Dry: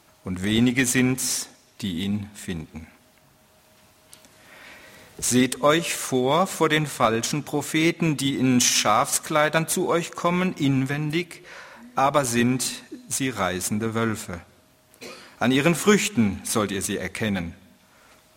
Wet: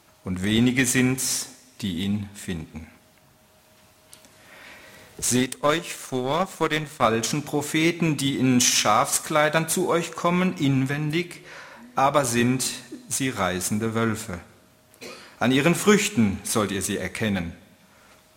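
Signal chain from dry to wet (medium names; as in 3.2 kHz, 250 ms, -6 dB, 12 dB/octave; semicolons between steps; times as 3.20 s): two-slope reverb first 0.62 s, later 2.5 s, from -18 dB, DRR 13.5 dB; 5.36–7.02 s: power-law waveshaper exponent 1.4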